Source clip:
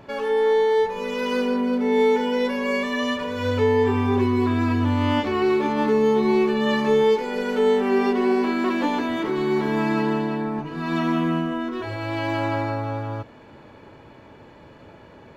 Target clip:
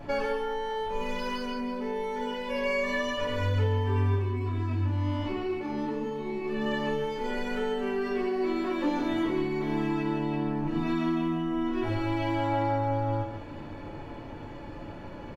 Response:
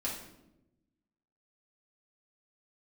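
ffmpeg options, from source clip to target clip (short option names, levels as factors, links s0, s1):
-filter_complex "[0:a]lowshelf=f=110:g=12,aecho=1:1:5.8:0.32,acompressor=threshold=0.0355:ratio=5,asplit=3[s0][s1][s2];[s0]afade=t=out:st=4.14:d=0.02[s3];[s1]flanger=delay=7:depth=7.2:regen=73:speed=1.3:shape=sinusoidal,afade=t=in:st=4.14:d=0.02,afade=t=out:st=6.43:d=0.02[s4];[s2]afade=t=in:st=6.43:d=0.02[s5];[s3][s4][s5]amix=inputs=3:normalize=0,aecho=1:1:144:0.398[s6];[1:a]atrim=start_sample=2205,atrim=end_sample=3087,asetrate=48510,aresample=44100[s7];[s6][s7]afir=irnorm=-1:irlink=0"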